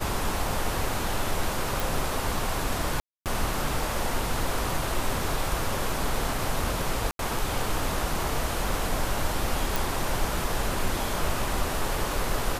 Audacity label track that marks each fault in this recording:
1.800000	1.800000	pop
3.000000	3.260000	dropout 258 ms
7.110000	7.190000	dropout 82 ms
9.760000	9.760000	pop

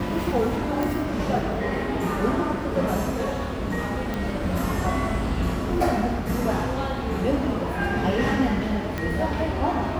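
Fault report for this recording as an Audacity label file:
0.830000	0.830000	pop
4.140000	4.140000	pop -15 dBFS
8.980000	8.980000	pop -14 dBFS

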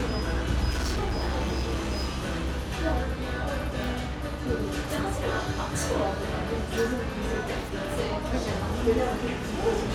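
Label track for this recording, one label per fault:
0.710000	2.610000	clipped -24.5 dBFS
3.840000	3.840000	pop

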